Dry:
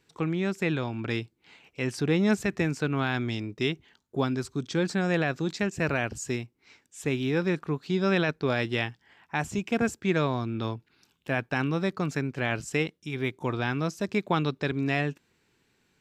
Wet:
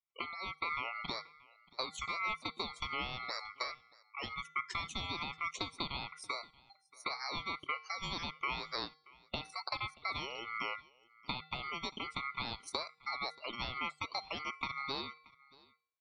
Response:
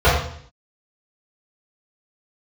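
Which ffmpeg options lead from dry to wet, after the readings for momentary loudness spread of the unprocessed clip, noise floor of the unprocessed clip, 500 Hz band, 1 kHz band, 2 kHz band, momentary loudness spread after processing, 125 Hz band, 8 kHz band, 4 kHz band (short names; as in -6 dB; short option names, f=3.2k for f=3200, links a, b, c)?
8 LU, -72 dBFS, -19.5 dB, -4.5 dB, -8.0 dB, 6 LU, -22.5 dB, -11.0 dB, -1.5 dB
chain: -filter_complex "[0:a]afftdn=nr=34:nf=-40,afreqshift=180,acrossover=split=410 3100:gain=0.224 1 0.178[a][b][c];[a][b][c]amix=inputs=3:normalize=0,acrossover=split=1900[d][e];[e]dynaudnorm=f=270:g=11:m=10.5dB[f];[d][f]amix=inputs=2:normalize=0,alimiter=limit=-15.5dB:level=0:latency=1:release=454,acompressor=threshold=-36dB:ratio=12,acrossover=split=1300[g][h];[g]aeval=exprs='val(0)*(1-0.7/2+0.7/2*cos(2*PI*1.3*n/s))':c=same[i];[h]aeval=exprs='val(0)*(1-0.7/2-0.7/2*cos(2*PI*1.3*n/s))':c=same[j];[i][j]amix=inputs=2:normalize=0,bandreject=f=310:t=h:w=4,bandreject=f=620:t=h:w=4,bandreject=f=930:t=h:w=4,bandreject=f=1.24k:t=h:w=4,bandreject=f=1.55k:t=h:w=4,bandreject=f=1.86k:t=h:w=4,bandreject=f=2.17k:t=h:w=4,bandreject=f=2.48k:t=h:w=4,bandreject=f=2.79k:t=h:w=4,bandreject=f=3.1k:t=h:w=4,bandreject=f=3.41k:t=h:w=4,bandreject=f=3.72k:t=h:w=4,bandreject=f=4.03k:t=h:w=4,bandreject=f=4.34k:t=h:w=4,bandreject=f=4.65k:t=h:w=4,bandreject=f=4.96k:t=h:w=4,bandreject=f=5.27k:t=h:w=4,bandreject=f=5.58k:t=h:w=4,bandreject=f=5.89k:t=h:w=4,bandreject=f=6.2k:t=h:w=4,bandreject=f=6.51k:t=h:w=4,bandreject=f=6.82k:t=h:w=4,aeval=exprs='val(0)*sin(2*PI*1700*n/s)':c=same,asplit=2[k][l];[l]aecho=0:1:630:0.0668[m];[k][m]amix=inputs=2:normalize=0,volume=7dB"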